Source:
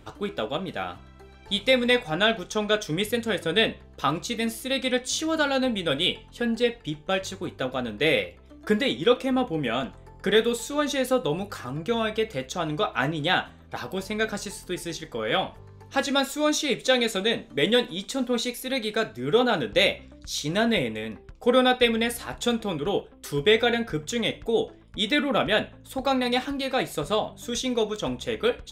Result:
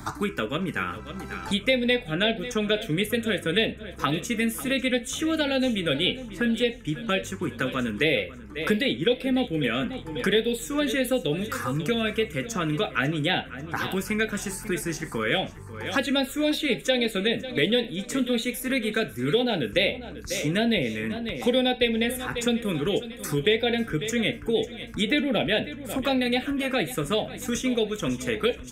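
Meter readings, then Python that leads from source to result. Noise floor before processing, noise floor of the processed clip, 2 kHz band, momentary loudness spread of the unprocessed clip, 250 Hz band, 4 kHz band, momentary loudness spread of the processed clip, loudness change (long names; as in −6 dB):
−49 dBFS, −41 dBFS, 0.0 dB, 10 LU, +2.0 dB, −1.0 dB, 6 LU, −0.5 dB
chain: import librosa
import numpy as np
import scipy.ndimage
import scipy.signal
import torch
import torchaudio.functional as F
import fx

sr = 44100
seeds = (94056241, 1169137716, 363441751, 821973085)

y = fx.env_phaser(x, sr, low_hz=480.0, high_hz=1200.0, full_db=-19.0)
y = fx.echo_feedback(y, sr, ms=544, feedback_pct=43, wet_db=-17)
y = fx.band_squash(y, sr, depth_pct=70)
y = y * 10.0 ** (2.0 / 20.0)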